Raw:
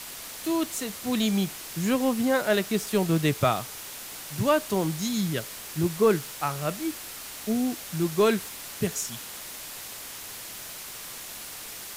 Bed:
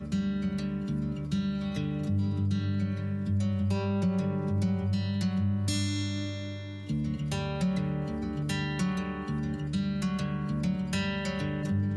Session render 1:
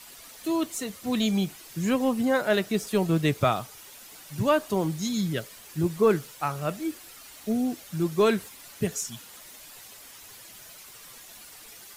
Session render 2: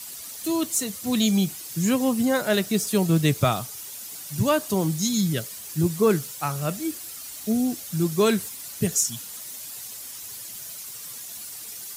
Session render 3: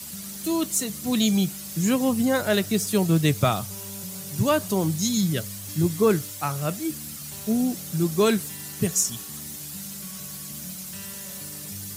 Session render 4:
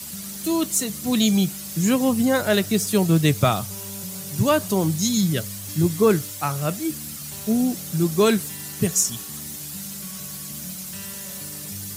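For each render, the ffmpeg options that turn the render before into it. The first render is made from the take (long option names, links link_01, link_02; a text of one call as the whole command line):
ffmpeg -i in.wav -af "afftdn=noise_reduction=10:noise_floor=-40" out.wav
ffmpeg -i in.wav -af "highpass=69,bass=frequency=250:gain=6,treble=frequency=4000:gain=11" out.wav
ffmpeg -i in.wav -i bed.wav -filter_complex "[1:a]volume=-12.5dB[link_01];[0:a][link_01]amix=inputs=2:normalize=0" out.wav
ffmpeg -i in.wav -af "volume=2.5dB" out.wav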